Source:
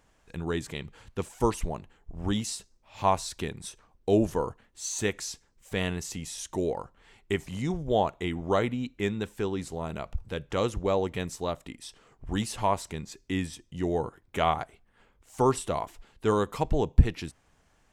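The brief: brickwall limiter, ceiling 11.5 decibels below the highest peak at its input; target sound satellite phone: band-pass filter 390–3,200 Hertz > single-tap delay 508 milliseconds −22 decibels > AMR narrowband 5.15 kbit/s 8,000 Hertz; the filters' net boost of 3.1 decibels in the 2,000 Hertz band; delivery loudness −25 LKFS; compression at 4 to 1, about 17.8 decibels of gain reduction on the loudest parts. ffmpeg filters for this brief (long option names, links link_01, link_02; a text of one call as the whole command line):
ffmpeg -i in.wav -af "equalizer=frequency=2000:width_type=o:gain=4.5,acompressor=threshold=-32dB:ratio=4,alimiter=level_in=5.5dB:limit=-24dB:level=0:latency=1,volume=-5.5dB,highpass=390,lowpass=3200,aecho=1:1:508:0.0794,volume=22dB" -ar 8000 -c:a libopencore_amrnb -b:a 5150 out.amr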